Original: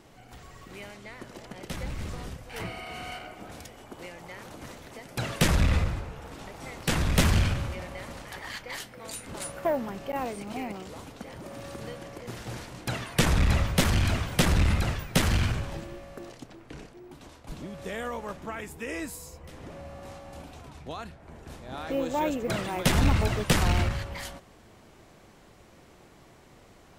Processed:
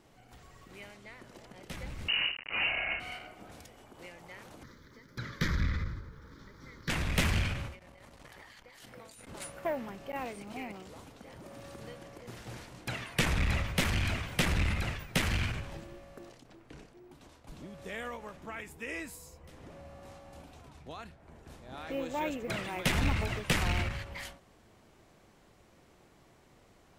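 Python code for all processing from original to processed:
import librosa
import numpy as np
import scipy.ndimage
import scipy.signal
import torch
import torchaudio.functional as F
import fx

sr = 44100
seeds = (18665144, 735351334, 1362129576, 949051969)

y = fx.chain(x, sr, fx.quant_companded(bits=2),
    fx.freq_invert(carrier_hz=2900), at=(2.08, 3.0))
y = fx.chain(y, sr, fx.high_shelf(hz=6100.0, db=-7.0),
    fx.fixed_phaser(hz=2700.0, stages=6),
    fx.quant_dither(seeds[0], bits=12, dither='none'), at=(4.63, 6.9))
y = fx.chain(y, sr, fx.over_compress(threshold_db=-45.0, ratio=-1.0),
    fx.transformer_sat(knee_hz=320.0), at=(7.79, 9.27))
y = fx.dynamic_eq(y, sr, hz=2300.0, q=1.4, threshold_db=-47.0, ratio=4.0, max_db=7)
y = fx.end_taper(y, sr, db_per_s=130.0)
y = y * 10.0 ** (-7.0 / 20.0)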